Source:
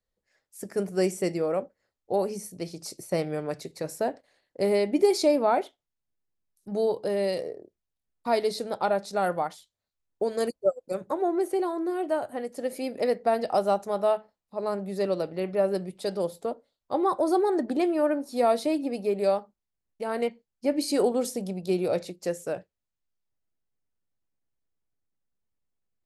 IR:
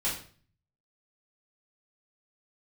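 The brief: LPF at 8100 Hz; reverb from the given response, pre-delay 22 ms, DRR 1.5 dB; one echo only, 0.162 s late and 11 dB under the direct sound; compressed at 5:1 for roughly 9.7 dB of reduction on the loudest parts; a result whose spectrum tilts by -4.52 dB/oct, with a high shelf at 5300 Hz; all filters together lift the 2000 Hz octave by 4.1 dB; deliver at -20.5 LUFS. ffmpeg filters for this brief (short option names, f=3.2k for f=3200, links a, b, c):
-filter_complex "[0:a]lowpass=8.1k,equalizer=f=2k:t=o:g=4.5,highshelf=f=5.3k:g=5.5,acompressor=threshold=-27dB:ratio=5,aecho=1:1:162:0.282,asplit=2[a][b];[1:a]atrim=start_sample=2205,adelay=22[c];[b][c]afir=irnorm=-1:irlink=0,volume=-8.5dB[d];[a][d]amix=inputs=2:normalize=0,volume=9.5dB"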